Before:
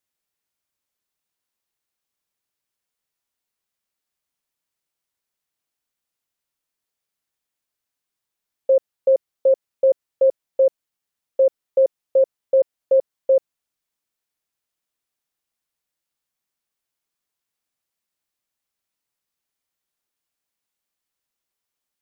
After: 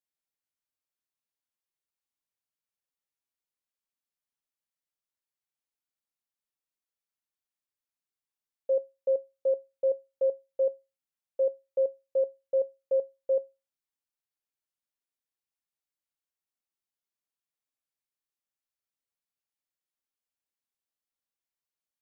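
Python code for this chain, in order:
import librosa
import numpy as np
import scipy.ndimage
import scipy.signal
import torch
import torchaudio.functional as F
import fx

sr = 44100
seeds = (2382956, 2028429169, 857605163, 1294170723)

y = fx.comb_fb(x, sr, f0_hz=270.0, decay_s=0.24, harmonics='all', damping=0.0, mix_pct=50)
y = y * 10.0 ** (-7.0 / 20.0)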